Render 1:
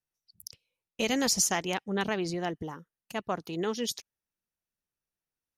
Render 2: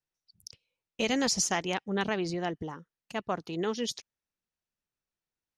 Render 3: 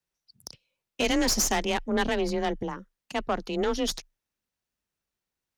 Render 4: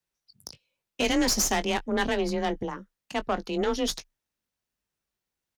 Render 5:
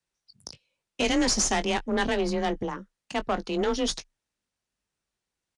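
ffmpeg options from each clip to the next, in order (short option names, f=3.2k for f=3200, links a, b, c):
-af "lowpass=6.7k"
-af "aeval=exprs='(tanh(22.4*val(0)+0.65)-tanh(0.65))/22.4':c=same,afreqshift=23,volume=8dB"
-filter_complex "[0:a]asplit=2[a][b];[b]adelay=20,volume=-12.5dB[c];[a][c]amix=inputs=2:normalize=0"
-filter_complex "[0:a]asplit=2[a][b];[b]volume=29.5dB,asoftclip=hard,volume=-29.5dB,volume=-8dB[c];[a][c]amix=inputs=2:normalize=0,aresample=22050,aresample=44100,volume=-1dB"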